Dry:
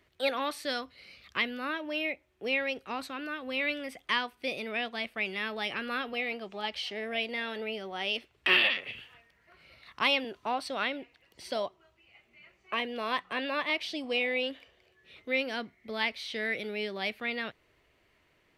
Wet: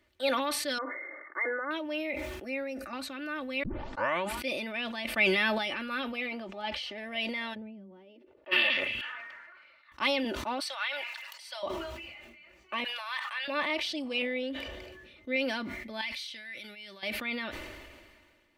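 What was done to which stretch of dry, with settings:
0.78–1.71 brick-wall FIR band-pass 280–2200 Hz
2.44–2.93 fixed phaser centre 640 Hz, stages 8
3.63 tape start 0.77 s
5.05–5.58 gain +8.5 dB
6.26–6.98 high shelf 3300 Hz -7.5 dB
7.53–8.51 band-pass 110 Hz -> 600 Hz, Q 4.8
9.01–9.92 band-pass 1400 Hz, Q 1.9
10.6–11.63 HPF 860 Hz 24 dB/oct
12.84–13.48 HPF 930 Hz 24 dB/oct
14.22–15.36 tilt shelf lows +4 dB, about 650 Hz
16.01–17.03 passive tone stack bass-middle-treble 5-5-5
whole clip: comb 3.4 ms, depth 63%; sustainer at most 32 dB/s; gain -3.5 dB

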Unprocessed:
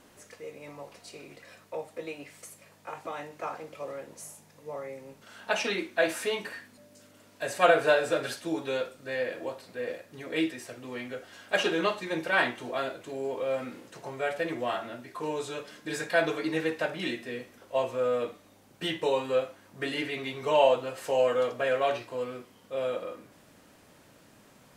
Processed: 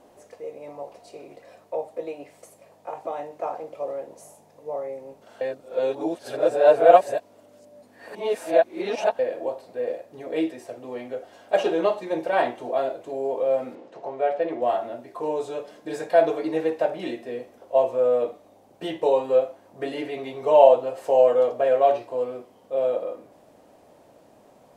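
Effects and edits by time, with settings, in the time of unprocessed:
5.41–9.19 reverse
13.75–14.62 BPF 160–4100 Hz
whole clip: EQ curve 170 Hz 0 dB, 710 Hz +13 dB, 1400 Hz -3 dB; gain -2.5 dB

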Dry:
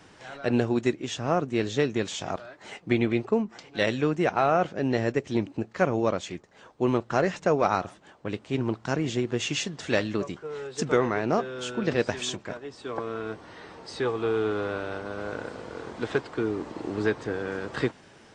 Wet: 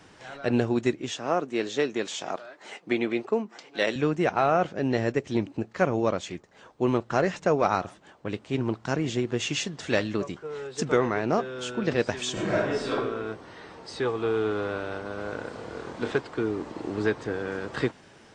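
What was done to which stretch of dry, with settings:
1.11–3.96 HPF 270 Hz
12.32–12.9 reverb throw, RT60 1 s, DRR -11 dB
15.5–16.11 flutter echo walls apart 5 m, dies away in 0.25 s

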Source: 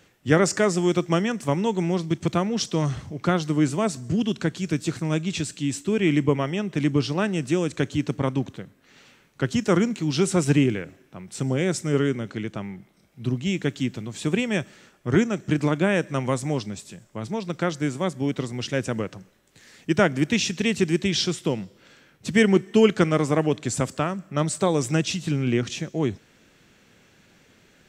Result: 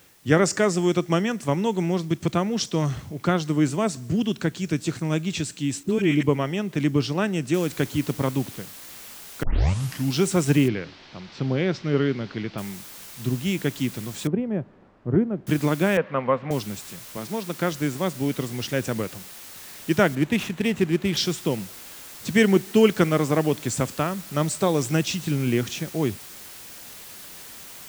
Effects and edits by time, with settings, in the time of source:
5.83–6.23 dispersion highs, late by 46 ms, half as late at 870 Hz
7.54 noise floor step -57 dB -42 dB
9.43 tape start 0.72 s
10.68–12.58 steep low-pass 4900 Hz
14.27–15.47 Bessel low-pass 580 Hz
15.97–16.51 speaker cabinet 120–2600 Hz, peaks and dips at 130 Hz -5 dB, 330 Hz -10 dB, 510 Hz +7 dB, 1100 Hz +7 dB
17.17–17.59 HPF 170 Hz
20.15–21.17 median filter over 9 samples

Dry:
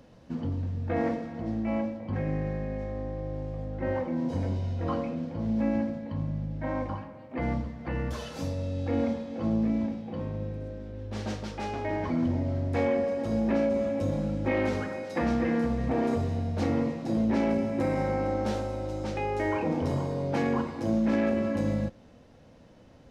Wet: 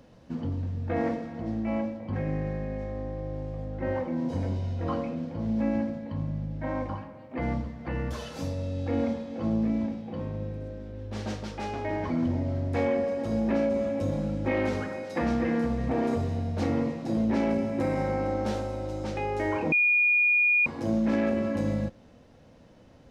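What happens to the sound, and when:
19.72–20.66 bleep 2440 Hz -19 dBFS

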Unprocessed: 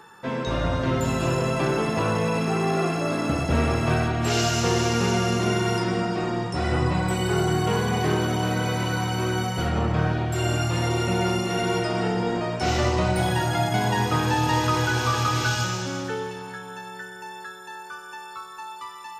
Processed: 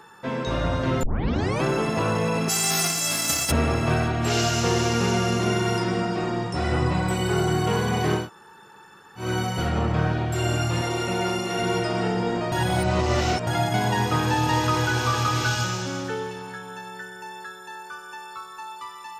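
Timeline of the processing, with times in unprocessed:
1.03 tape start 0.60 s
2.48–3.5 spectral whitening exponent 0.3
8.22–9.23 room tone, crossfade 0.16 s
10.81–11.59 low shelf 150 Hz -10 dB
12.52–13.47 reverse

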